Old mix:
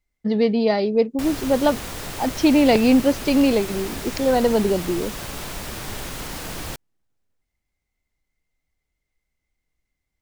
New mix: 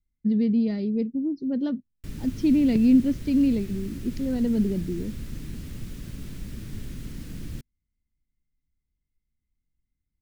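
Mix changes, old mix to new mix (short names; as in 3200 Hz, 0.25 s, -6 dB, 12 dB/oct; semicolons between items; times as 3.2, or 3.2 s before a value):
background: entry +0.85 s; master: add EQ curve 240 Hz 0 dB, 800 Hz -27 dB, 1800 Hz -16 dB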